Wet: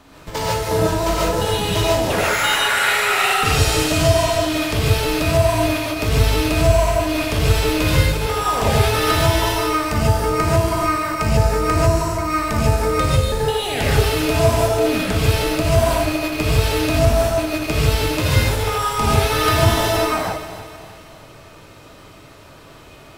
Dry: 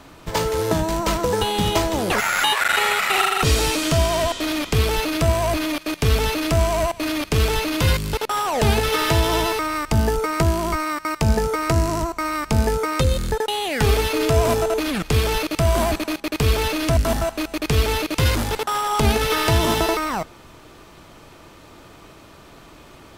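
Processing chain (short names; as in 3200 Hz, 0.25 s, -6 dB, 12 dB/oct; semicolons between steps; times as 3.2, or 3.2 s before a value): regenerating reverse delay 0.155 s, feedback 68%, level -12.5 dB; flutter echo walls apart 10 m, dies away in 0.26 s; non-linear reverb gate 0.17 s rising, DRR -5.5 dB; gain -4.5 dB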